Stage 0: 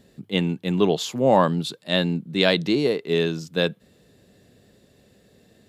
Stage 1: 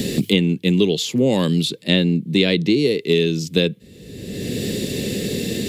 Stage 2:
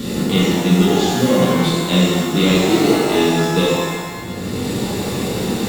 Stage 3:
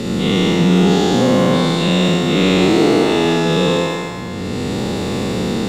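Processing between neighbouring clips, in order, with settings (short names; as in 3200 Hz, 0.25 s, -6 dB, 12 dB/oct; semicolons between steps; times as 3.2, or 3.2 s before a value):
band shelf 990 Hz -15 dB; three-band squash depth 100%; gain +5.5 dB
in parallel at -4 dB: sample-and-hold 27×; on the sum: shimmer reverb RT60 1.5 s, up +12 st, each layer -8 dB, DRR -7 dB; gain -8 dB
spectral dilation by 0.24 s; air absorption 52 m; gain -4 dB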